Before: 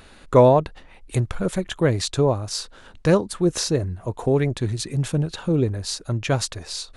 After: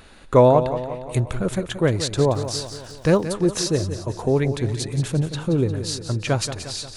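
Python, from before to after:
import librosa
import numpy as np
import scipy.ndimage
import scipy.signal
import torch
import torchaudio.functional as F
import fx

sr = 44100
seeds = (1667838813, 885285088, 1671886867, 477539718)

y = fx.echo_feedback(x, sr, ms=177, feedback_pct=56, wet_db=-11)
y = fx.dmg_crackle(y, sr, seeds[0], per_s=160.0, level_db=-39.0, at=(2.29, 3.24), fade=0.02)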